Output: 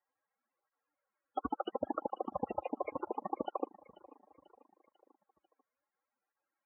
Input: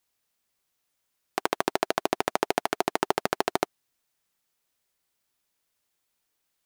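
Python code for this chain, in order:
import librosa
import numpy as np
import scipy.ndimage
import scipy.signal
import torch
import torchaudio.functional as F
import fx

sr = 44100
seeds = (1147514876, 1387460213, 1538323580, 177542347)

p1 = fx.rattle_buzz(x, sr, strikes_db=-40.0, level_db=-22.0)
p2 = scipy.signal.sosfilt(scipy.signal.butter(2, 1800.0, 'lowpass', fs=sr, output='sos'), p1)
p3 = fx.low_shelf(p2, sr, hz=270.0, db=-7.5)
p4 = 10.0 ** (-21.0 / 20.0) * (np.abs((p3 / 10.0 ** (-21.0 / 20.0) + 3.0) % 4.0 - 2.0) - 1.0)
p5 = fx.spec_topn(p4, sr, count=32)
p6 = scipy.signal.sosfilt(scipy.signal.butter(4, 57.0, 'highpass', fs=sr, output='sos'), p5)
p7 = p6 + fx.echo_feedback(p6, sr, ms=491, feedback_pct=52, wet_db=-21.0, dry=0)
p8 = fx.rider(p7, sr, range_db=10, speed_s=0.5)
p9 = p8 + 0.63 * np.pad(p8, (int(3.7 * sr / 1000.0), 0))[:len(p8)]
p10 = fx.flanger_cancel(p9, sr, hz=0.71, depth_ms=6.2)
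y = p10 * 10.0 ** (3.5 / 20.0)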